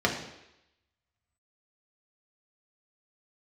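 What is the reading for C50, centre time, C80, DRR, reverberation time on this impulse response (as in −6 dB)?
7.0 dB, 26 ms, 9.5 dB, −1.0 dB, 0.85 s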